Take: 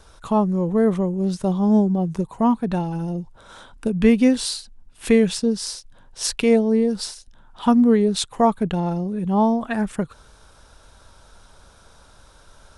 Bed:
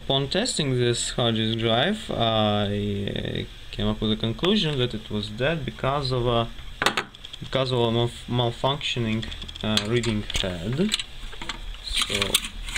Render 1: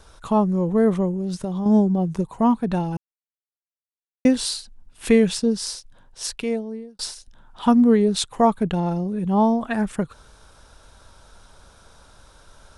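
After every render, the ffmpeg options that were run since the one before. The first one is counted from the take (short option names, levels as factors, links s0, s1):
-filter_complex "[0:a]asettb=1/sr,asplit=3[s0][s1][s2];[s0]atrim=end=1.114[s3];[s1]atrim=start=1.11:end=1.66,asetpts=PTS-STARTPTS,afade=t=in:d=0.004:c=qsin,afade=t=out:st=0.546:d=0.004:c=qsin,acompressor=threshold=0.0794:ratio=6:attack=3.2:release=140:knee=1:detection=peak[s4];[s2]atrim=start=1.656[s5];[s3][s4]acrossfade=d=0.004:c1=hsin:c2=qsin[s6];[s6][s5]acrossfade=d=0.004:c1=qsin:c2=hsin,asplit=4[s7][s8][s9][s10];[s7]atrim=end=2.97,asetpts=PTS-STARTPTS,afade=t=out:st=2.966:d=0.004:c=hsin[s11];[s8]atrim=start=2.97:end=4.25,asetpts=PTS-STARTPTS,volume=0[s12];[s9]atrim=start=4.25:end=6.99,asetpts=PTS-STARTPTS,afade=t=in:d=0.004:c=hsin,afade=t=out:st=1.47:d=1.27[s13];[s10]atrim=start=6.99,asetpts=PTS-STARTPTS,afade=t=in:d=0.004:c=hsin[s14];[s11][s12][s13][s14]concat=n=4:v=0:a=1"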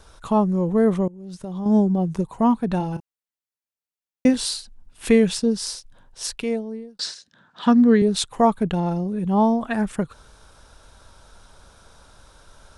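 -filter_complex "[0:a]asettb=1/sr,asplit=3[s0][s1][s2];[s0]atrim=end=2.774[s3];[s1]atrim=start=2.77:end=4.34,asetpts=PTS-STARTPTS,afade=t=in:d=0.004:c=qsin,afade=t=out:st=1.566:d=0.004:c=qsin,asplit=2[s4][s5];[s5]adelay=32,volume=0.266[s6];[s4][s6]amix=inputs=2:normalize=0,atrim=end_sample=69237[s7];[s2]atrim=start=4.336[s8];[s3][s7]acrossfade=d=0.004:c1=hsin:c2=qsin[s9];[s9][s8]acrossfade=d=0.004:c1=qsin:c2=hsin,asettb=1/sr,asplit=3[s10][s11][s12];[s10]atrim=end=6.994[s13];[s11]atrim=start=6.99:end=8.02,asetpts=PTS-STARTPTS,afade=t=in:d=0.004:c=qsin,afade=t=out:st=1.026:d=0.004:c=qsin,highpass=f=130:w=0.5412,highpass=f=130:w=1.3066,equalizer=f=170:t=q:w=4:g=5,equalizer=f=850:t=q:w=4:g=-6,equalizer=f=1700:t=q:w=4:g=9,equalizer=f=4100:t=q:w=4:g=6,lowpass=f=7400:w=0.5412,lowpass=f=7400:w=1.3066[s14];[s12]atrim=start=8.016[s15];[s13][s14]acrossfade=d=0.004:c1=hsin:c2=qsin[s16];[s16][s15]acrossfade=d=0.004:c1=qsin:c2=hsin,asplit=2[s17][s18];[s17]atrim=end=1.08,asetpts=PTS-STARTPTS,afade=t=out:st=1.076:d=0.004:c=hsin:silence=0.0794328[s19];[s18]atrim=start=1.08,asetpts=PTS-STARTPTS,afade=t=in:d=0.75:silence=0.0794328[s20];[s19][s20]concat=n=2:v=0:a=1"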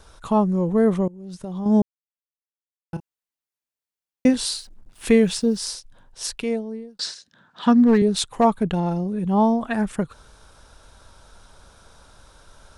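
-filter_complex "[0:a]asettb=1/sr,asplit=3[s0][s1][s2];[s0]atrim=end=4.554[s3];[s1]atrim=start=4.55:end=5.67,asetpts=PTS-STARTPTS,afade=t=in:d=0.004:c=qsin,afade=t=out:st=1.116:d=0.004:c=qsin,acrusher=bits=8:mix=0:aa=0.5[s4];[s2]atrim=start=5.666[s5];[s3][s4]acrossfade=d=0.004:c1=hsin:c2=qsin[s6];[s6][s5]acrossfade=d=0.004:c1=qsin:c2=hsin,asplit=3[s7][s8][s9];[s7]afade=t=out:st=7.82:d=0.02[s10];[s8]asoftclip=type=hard:threshold=0.299,afade=t=in:st=7.82:d=0.02,afade=t=out:st=8.43:d=0.02[s11];[s9]afade=t=in:st=8.43:d=0.02[s12];[s10][s11][s12]amix=inputs=3:normalize=0,asplit=3[s13][s14][s15];[s13]atrim=end=1.82,asetpts=PTS-STARTPTS,afade=t=out:st=1.816:d=0.004:c=hsin[s16];[s14]atrim=start=1.82:end=2.93,asetpts=PTS-STARTPTS,volume=0[s17];[s15]atrim=start=2.93,asetpts=PTS-STARTPTS,afade=t=in:d=0.004:c=hsin[s18];[s16][s17][s18]concat=n=3:v=0:a=1"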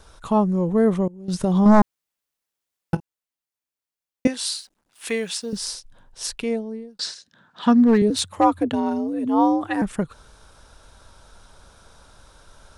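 -filter_complex "[0:a]asettb=1/sr,asplit=3[s0][s1][s2];[s0]atrim=end=1.284[s3];[s1]atrim=start=1.28:end=2.95,asetpts=PTS-STARTPTS,afade=t=in:d=0.004:c=qsin,afade=t=out:st=1.666:d=0.004:c=qsin,aeval=exprs='0.376*sin(PI/2*2.51*val(0)/0.376)':c=same[s4];[s2]atrim=start=2.946[s5];[s3][s4]acrossfade=d=0.004:c1=hsin:c2=qsin[s6];[s6][s5]acrossfade=d=0.004:c1=qsin:c2=hsin,asettb=1/sr,asplit=3[s7][s8][s9];[s7]atrim=end=4.274[s10];[s8]atrim=start=4.27:end=5.53,asetpts=PTS-STARTPTS,afade=t=in:d=0.004:c=qsin,afade=t=out:st=1.256:d=0.004:c=qsin,highpass=f=1100:p=1[s11];[s9]atrim=start=5.526[s12];[s10][s11]acrossfade=d=0.004:c1=hsin:c2=qsin[s13];[s13][s12]acrossfade=d=0.004:c1=qsin:c2=hsin,asettb=1/sr,asplit=3[s14][s15][s16];[s14]atrim=end=8.104[s17];[s15]atrim=start=8.1:end=9.82,asetpts=PTS-STARTPTS,afade=t=in:d=0.004:c=qsin,afade=t=out:st=1.716:d=0.004:c=qsin,afreqshift=75[s18];[s16]atrim=start=9.816[s19];[s17][s18]acrossfade=d=0.004:c1=hsin:c2=qsin[s20];[s20][s19]acrossfade=d=0.004:c1=qsin:c2=hsin"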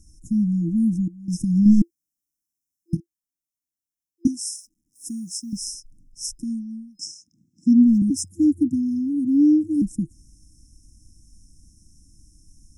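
-af "afftfilt=real='re*(1-between(b*sr/4096,340,5100))':imag='im*(1-between(b*sr/4096,340,5100))':win_size=4096:overlap=0.75,adynamicequalizer=threshold=0.02:dfrequency=320:dqfactor=3.3:tfrequency=320:tqfactor=3.3:attack=5:release=100:ratio=0.375:range=3:mode=boostabove:tftype=bell"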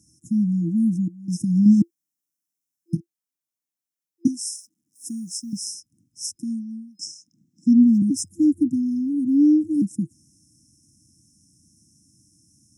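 -af "highpass=f=110:w=0.5412,highpass=f=110:w=1.3066"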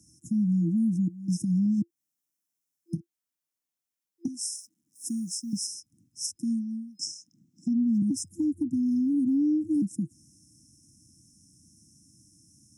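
-filter_complex "[0:a]acrossover=split=150[s0][s1];[s1]acompressor=threshold=0.0708:ratio=5[s2];[s0][s2]amix=inputs=2:normalize=0,alimiter=limit=0.1:level=0:latency=1:release=203"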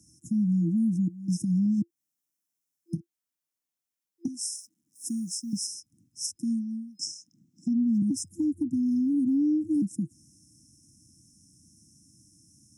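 -af anull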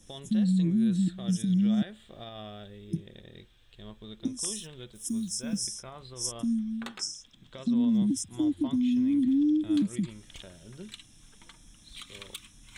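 -filter_complex "[1:a]volume=0.0891[s0];[0:a][s0]amix=inputs=2:normalize=0"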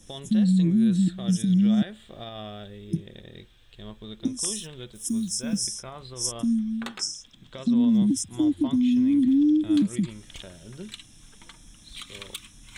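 -af "volume=1.68"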